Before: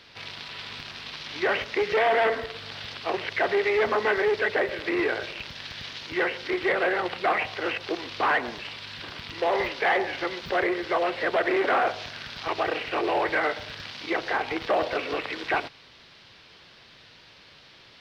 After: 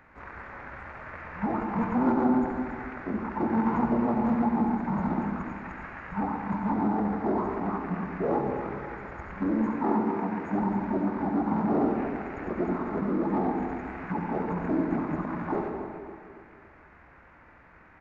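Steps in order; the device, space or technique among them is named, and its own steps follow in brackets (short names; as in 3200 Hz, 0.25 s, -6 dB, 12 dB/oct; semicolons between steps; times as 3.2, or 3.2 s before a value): 9.62–10.53 HPF 190 Hz 24 dB/oct; monster voice (pitch shift -10 st; formant shift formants -4 st; low shelf 190 Hz +5 dB; reverb RT60 1.7 s, pre-delay 55 ms, DRR 3 dB); feedback echo 0.28 s, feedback 42%, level -11.5 dB; gain -4.5 dB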